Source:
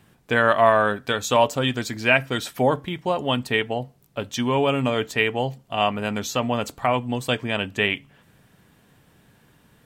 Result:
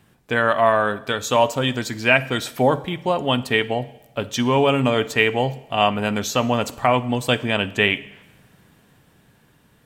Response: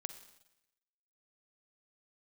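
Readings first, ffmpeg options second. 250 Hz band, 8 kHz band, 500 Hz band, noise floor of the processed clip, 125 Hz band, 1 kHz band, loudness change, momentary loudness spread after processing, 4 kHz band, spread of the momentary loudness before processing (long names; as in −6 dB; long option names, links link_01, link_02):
+3.0 dB, +2.5 dB, +2.0 dB, −57 dBFS, +3.0 dB, +2.0 dB, +2.0 dB, 8 LU, +3.0 dB, 8 LU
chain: -filter_complex "[0:a]dynaudnorm=framelen=270:gausssize=11:maxgain=11.5dB,asplit=2[link_01][link_02];[1:a]atrim=start_sample=2205[link_03];[link_02][link_03]afir=irnorm=-1:irlink=0,volume=0.5dB[link_04];[link_01][link_04]amix=inputs=2:normalize=0,volume=-5.5dB"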